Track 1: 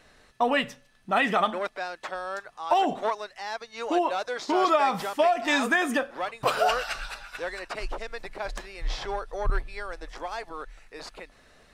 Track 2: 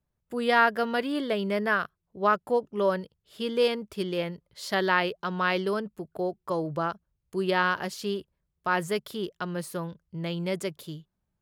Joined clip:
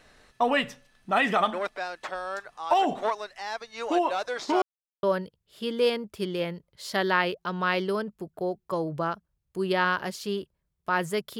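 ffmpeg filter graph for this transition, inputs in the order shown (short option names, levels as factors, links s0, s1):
-filter_complex "[0:a]apad=whole_dur=11.39,atrim=end=11.39,asplit=2[s0][s1];[s0]atrim=end=4.62,asetpts=PTS-STARTPTS,afade=t=out:st=4.616:d=0.004:c=hsin[s2];[s1]atrim=start=4.62:end=5.03,asetpts=PTS-STARTPTS,volume=0[s3];[1:a]atrim=start=2.81:end=9.17,asetpts=PTS-STARTPTS,afade=t=in:d=0.004:c=hsin[s4];[s2][s3][s4]concat=n=3:v=0:a=1"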